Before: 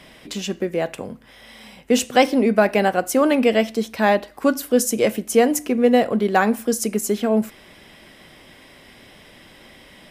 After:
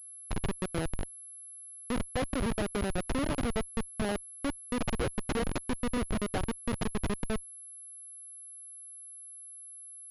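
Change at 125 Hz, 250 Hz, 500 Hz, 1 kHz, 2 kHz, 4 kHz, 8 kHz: -3.0, -14.0, -17.5, -16.5, -14.5, -12.5, -11.5 dB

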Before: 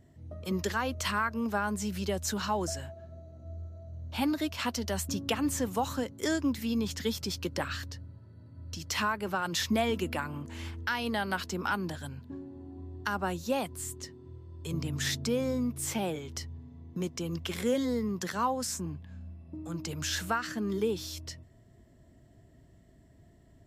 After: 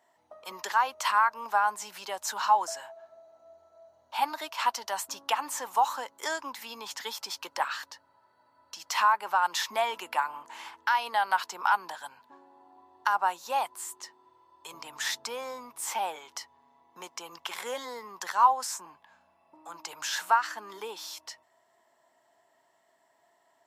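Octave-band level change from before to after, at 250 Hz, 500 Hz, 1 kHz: -20.5, -5.0, +9.0 dB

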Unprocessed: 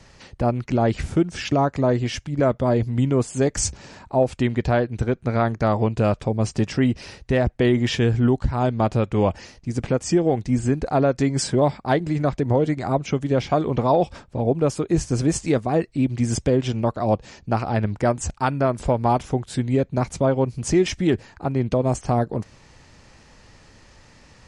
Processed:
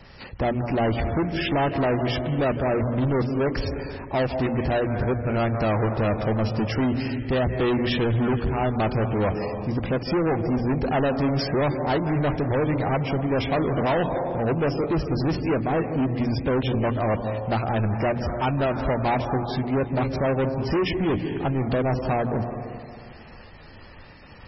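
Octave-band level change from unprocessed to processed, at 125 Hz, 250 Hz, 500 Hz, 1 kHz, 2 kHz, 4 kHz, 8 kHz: -2.5 dB, -2.5 dB, -2.5 dB, -1.5 dB, +1.5 dB, -0.5 dB, under -25 dB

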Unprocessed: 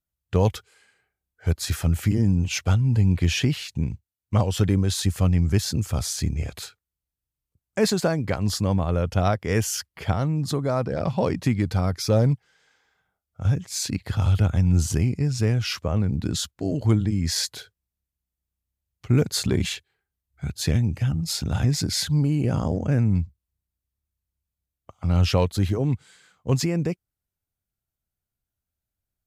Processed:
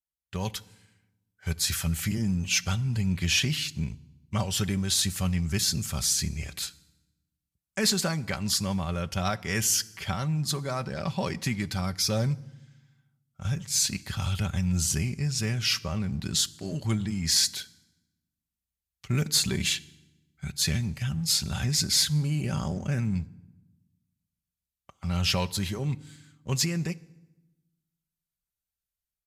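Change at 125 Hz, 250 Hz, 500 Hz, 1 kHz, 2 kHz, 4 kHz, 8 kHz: -7.5, -6.0, -9.5, -4.5, +0.5, +3.5, +4.0 dB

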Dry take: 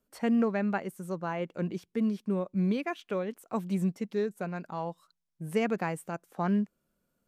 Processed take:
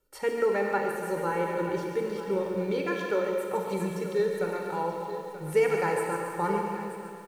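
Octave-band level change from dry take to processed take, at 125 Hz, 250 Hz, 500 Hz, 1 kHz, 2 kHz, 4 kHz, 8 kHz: -3.0, -4.5, +7.0, +6.5, +5.5, +3.5, +7.0 dB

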